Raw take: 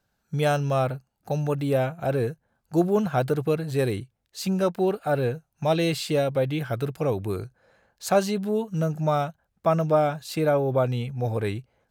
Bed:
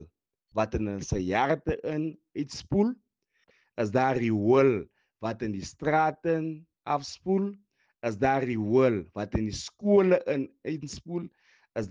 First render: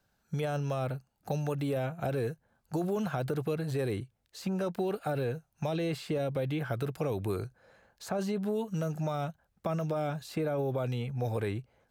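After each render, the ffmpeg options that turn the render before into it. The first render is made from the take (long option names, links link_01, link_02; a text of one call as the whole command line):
ffmpeg -i in.wav -filter_complex "[0:a]alimiter=limit=-19dB:level=0:latency=1:release=29,acrossover=split=440|1900[link_01][link_02][link_03];[link_01]acompressor=threshold=-32dB:ratio=4[link_04];[link_02]acompressor=threshold=-35dB:ratio=4[link_05];[link_03]acompressor=threshold=-48dB:ratio=4[link_06];[link_04][link_05][link_06]amix=inputs=3:normalize=0" out.wav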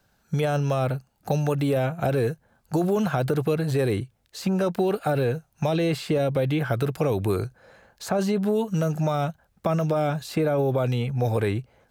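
ffmpeg -i in.wav -af "volume=8.5dB" out.wav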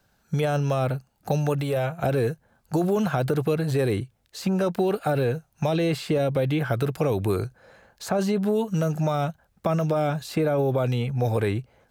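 ffmpeg -i in.wav -filter_complex "[0:a]asettb=1/sr,asplit=3[link_01][link_02][link_03];[link_01]atrim=end=1.614[link_04];[link_02]atrim=start=1.61:end=2.04,asetpts=PTS-STARTPTS,afade=type=in:duration=0.004:curve=qsin,afade=type=out:start_time=0.426:duration=0.004:curve=qsin,equalizer=frequency=240:width_type=o:width=0.77:gain=-10.5[link_05];[link_03]atrim=start=2.036[link_06];[link_04][link_05]acrossfade=duration=0.004:curve1=hsin:curve2=qsin[link_07];[link_07][link_06]acrossfade=duration=0.004:curve1=qsin:curve2=hsin" out.wav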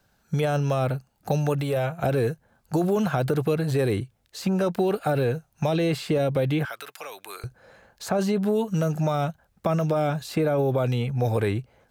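ffmpeg -i in.wav -filter_complex "[0:a]asettb=1/sr,asplit=3[link_01][link_02][link_03];[link_01]atrim=end=6.654[link_04];[link_02]atrim=start=6.65:end=7.44,asetpts=PTS-STARTPTS,afade=type=in:duration=0.004:curve=qsin,afade=type=out:start_time=0.786:duration=0.004:curve=qsin,highpass=1300[link_05];[link_03]atrim=start=7.436[link_06];[link_04][link_05]acrossfade=duration=0.004:curve1=hsin:curve2=qsin[link_07];[link_07][link_06]acrossfade=duration=0.004:curve1=qsin:curve2=hsin" out.wav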